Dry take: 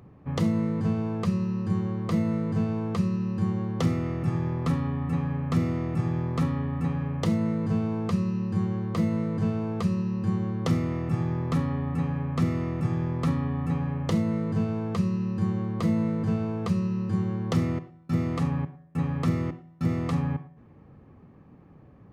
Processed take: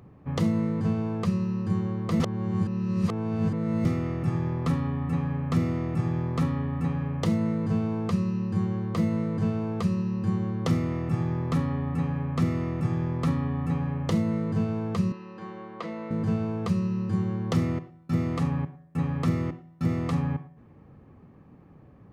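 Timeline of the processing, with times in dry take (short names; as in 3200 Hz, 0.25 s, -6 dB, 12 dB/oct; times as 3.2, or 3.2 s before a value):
2.2–3.85 reverse
15.12–16.11 BPF 470–3600 Hz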